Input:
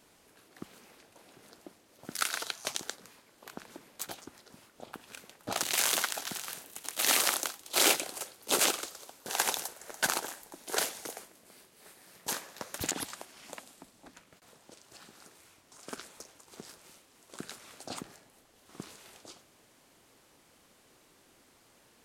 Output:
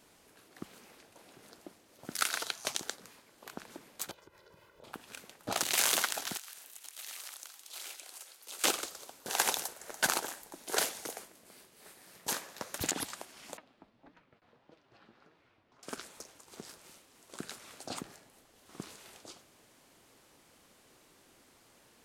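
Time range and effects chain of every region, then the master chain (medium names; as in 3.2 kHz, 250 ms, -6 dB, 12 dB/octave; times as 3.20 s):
4.11–4.84 s: peaking EQ 8.5 kHz -14 dB 1.9 oct + comb 2 ms, depth 90% + compression 2.5:1, threshold -57 dBFS
6.37–8.64 s: high-pass 1.5 kHz 6 dB/octave + compression 4:1, threshold -45 dBFS
13.57–15.83 s: distance through air 320 m + flange 1.7 Hz, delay 6 ms, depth 3.7 ms, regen +53%
whole clip: none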